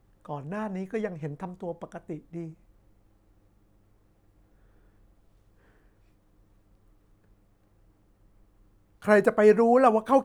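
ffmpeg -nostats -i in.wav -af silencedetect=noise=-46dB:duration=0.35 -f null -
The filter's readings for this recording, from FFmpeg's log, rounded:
silence_start: 2.54
silence_end: 9.02 | silence_duration: 6.48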